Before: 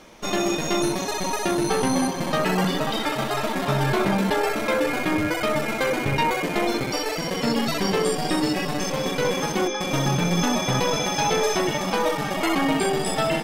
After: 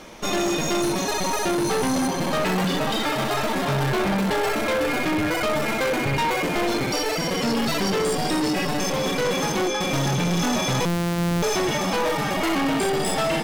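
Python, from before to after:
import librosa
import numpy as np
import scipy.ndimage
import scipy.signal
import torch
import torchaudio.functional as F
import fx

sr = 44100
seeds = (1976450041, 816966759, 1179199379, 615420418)

y = fx.sample_sort(x, sr, block=256, at=(10.85, 11.43))
y = 10.0 ** (-25.0 / 20.0) * np.tanh(y / 10.0 ** (-25.0 / 20.0))
y = y * librosa.db_to_amplitude(5.5)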